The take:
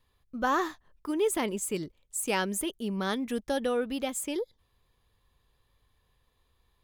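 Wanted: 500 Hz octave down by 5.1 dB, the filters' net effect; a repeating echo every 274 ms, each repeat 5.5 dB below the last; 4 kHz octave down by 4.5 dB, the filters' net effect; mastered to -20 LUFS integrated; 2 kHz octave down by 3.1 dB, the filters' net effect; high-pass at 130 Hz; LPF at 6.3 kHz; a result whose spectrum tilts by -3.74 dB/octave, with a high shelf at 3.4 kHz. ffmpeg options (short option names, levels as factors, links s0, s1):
-af "highpass=130,lowpass=6300,equalizer=f=500:t=o:g=-6,equalizer=f=2000:t=o:g=-3.5,highshelf=f=3400:g=5.5,equalizer=f=4000:t=o:g=-8,aecho=1:1:274|548|822|1096|1370|1644|1918:0.531|0.281|0.149|0.079|0.0419|0.0222|0.0118,volume=4.47"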